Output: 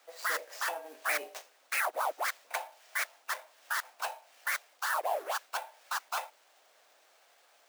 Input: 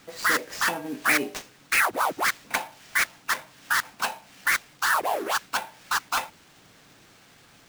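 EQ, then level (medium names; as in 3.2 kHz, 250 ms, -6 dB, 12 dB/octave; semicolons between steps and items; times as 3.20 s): ladder high-pass 520 Hz, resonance 50%; treble shelf 9.8 kHz +4.5 dB; -1.5 dB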